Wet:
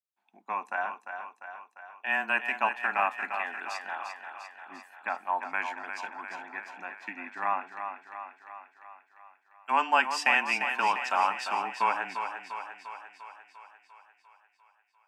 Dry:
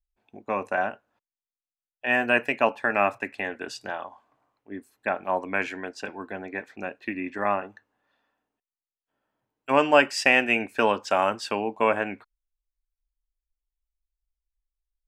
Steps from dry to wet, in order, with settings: brick-wall FIR high-pass 200 Hz; resonant low shelf 690 Hz -8 dB, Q 3; frequency shift -17 Hz; thinning echo 0.348 s, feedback 63%, high-pass 260 Hz, level -7.5 dB; gain -5.5 dB

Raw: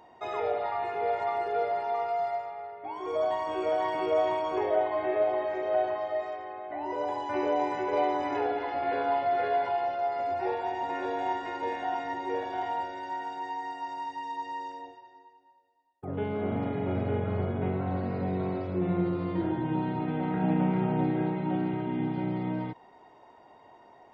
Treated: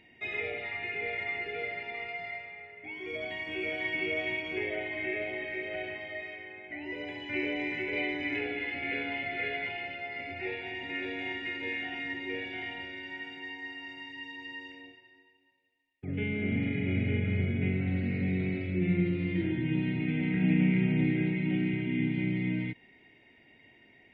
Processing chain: EQ curve 260 Hz 0 dB, 1100 Hz -25 dB, 2200 Hz +13 dB, 5700 Hz -13 dB; gain +2 dB

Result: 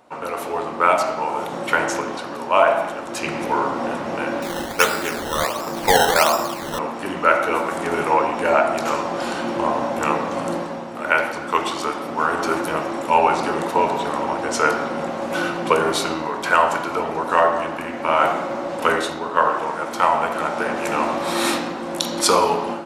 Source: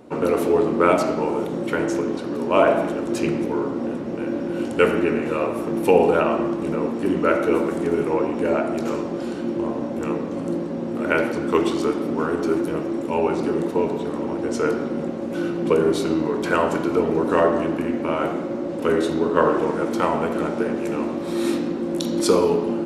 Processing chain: resonant low shelf 550 Hz -11.5 dB, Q 1.5; AGC gain up to 13 dB; 4.42–6.79 decimation with a swept rate 13×, swing 100% 1.4 Hz; gain -1 dB

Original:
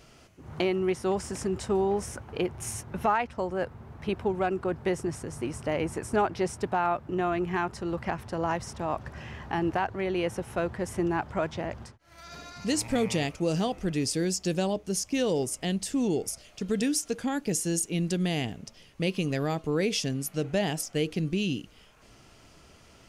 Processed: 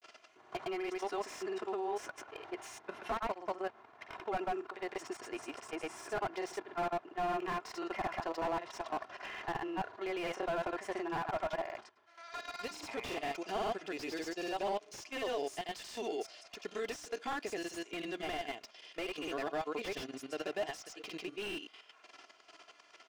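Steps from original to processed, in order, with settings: comb 2.9 ms, depth 48%; limiter -20 dBFS, peak gain reduction 6.5 dB; grains 0.1 s, grains 20/s, pitch spread up and down by 0 st; level quantiser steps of 11 dB; BPF 650–5000 Hz; slew limiter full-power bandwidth 12 Hz; gain +5.5 dB

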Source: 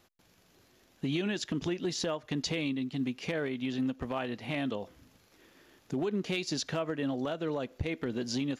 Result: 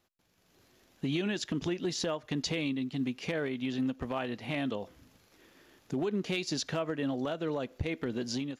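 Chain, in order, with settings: AGC gain up to 9 dB; gain -9 dB

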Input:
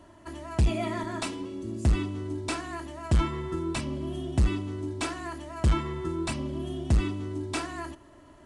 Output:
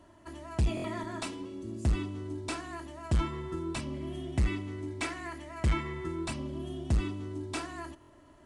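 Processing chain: 3.94–6.25 bell 2100 Hz +9.5 dB 0.4 oct; stuck buffer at 0.75/8, samples 1024, times 3; gain -4.5 dB

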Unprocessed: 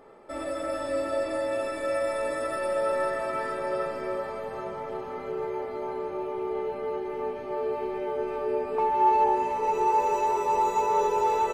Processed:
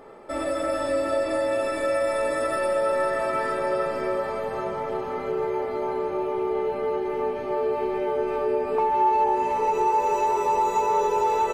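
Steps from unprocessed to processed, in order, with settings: compressor 2:1, threshold -28 dBFS, peak gain reduction 6.5 dB; gain +6 dB

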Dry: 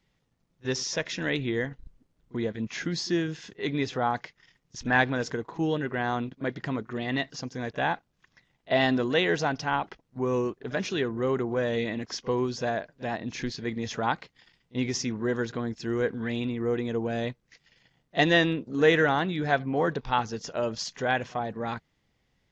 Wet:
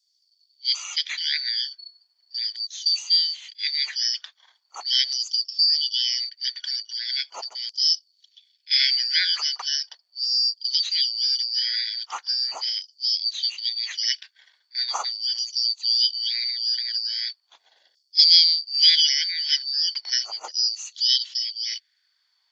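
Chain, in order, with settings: four-band scrambler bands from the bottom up 4321; LFO high-pass saw down 0.39 Hz 550–6400 Hz; gain +1 dB

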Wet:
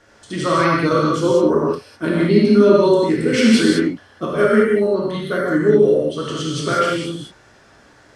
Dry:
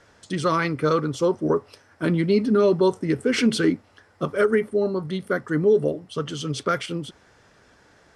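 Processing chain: non-linear reverb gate 0.23 s flat, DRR -5.5 dB

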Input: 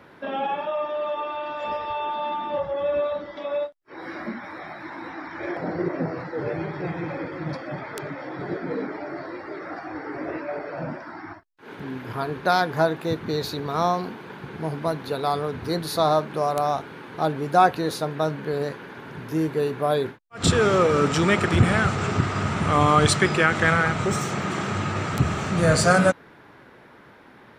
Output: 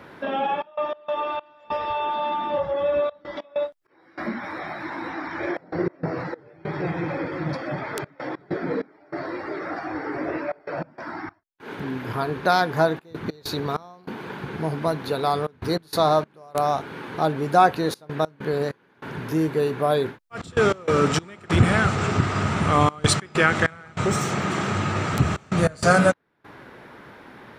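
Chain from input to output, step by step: in parallel at -2.5 dB: compressor, threshold -33 dBFS, peak gain reduction 20 dB; on the sum: step gate "xxxx.x.xx..xxxxx" 97 bpm -24 dB

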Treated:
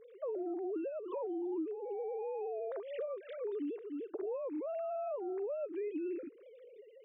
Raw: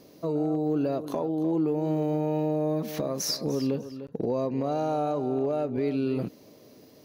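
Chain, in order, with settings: sine-wave speech; compressor 5:1, threshold -39 dBFS, peak gain reduction 20.5 dB; gain +1 dB

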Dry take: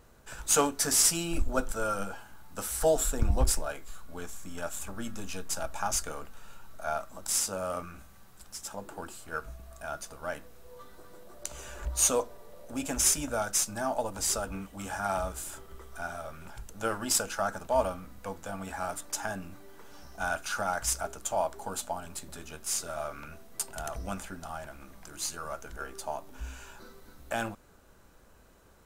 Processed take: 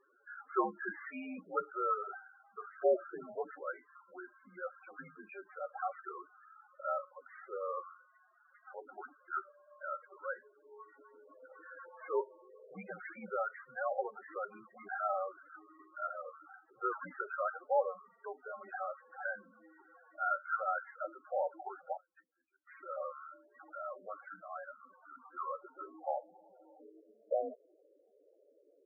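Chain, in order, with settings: 21.97–22.86 gate -37 dBFS, range -32 dB; low-pass sweep 1900 Hz -> 660 Hz, 24.46–26.75; mistuned SSB -74 Hz 350–2800 Hz; loudest bins only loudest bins 8; gain -4.5 dB

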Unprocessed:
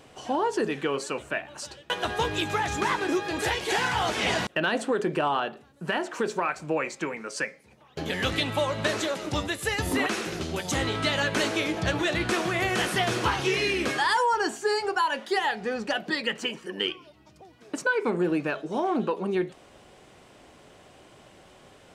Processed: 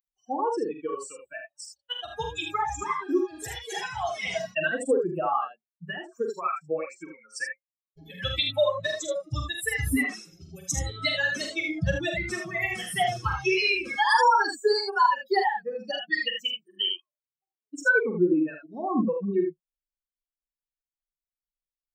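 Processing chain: per-bin expansion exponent 3; early reflections 45 ms -6.5 dB, 77 ms -5.5 dB; gain +7 dB

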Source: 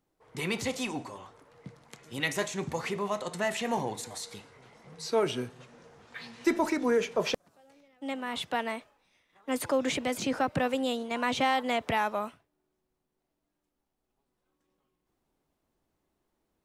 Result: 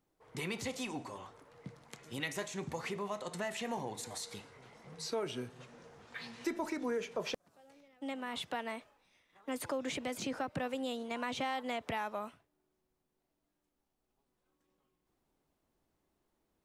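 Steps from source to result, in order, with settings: compressor 2:1, threshold -38 dBFS, peak gain reduction 10 dB; gain -1.5 dB

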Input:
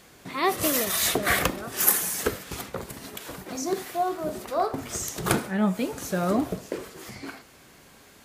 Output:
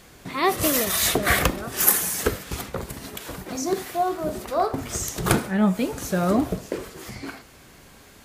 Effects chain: low shelf 78 Hz +11 dB; gain +2.5 dB

